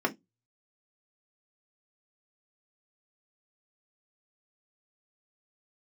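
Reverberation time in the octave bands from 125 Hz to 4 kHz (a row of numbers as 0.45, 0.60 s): 0.35, 0.20, 0.20, 0.15, 0.15, 0.15 s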